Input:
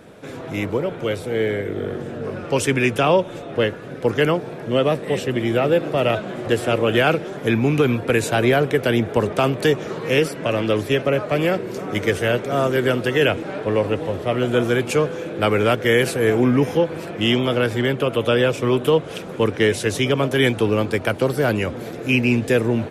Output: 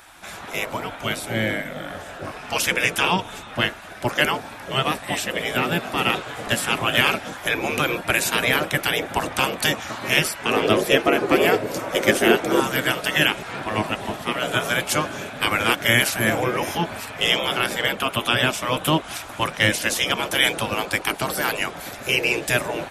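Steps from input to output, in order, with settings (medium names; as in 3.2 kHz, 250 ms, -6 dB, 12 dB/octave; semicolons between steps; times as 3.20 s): treble shelf 6.7 kHz +9 dB; spectral gate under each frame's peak -10 dB weak; 10.51–12.60 s: peaking EQ 400 Hz +13.5 dB 1.2 oct; trim +4 dB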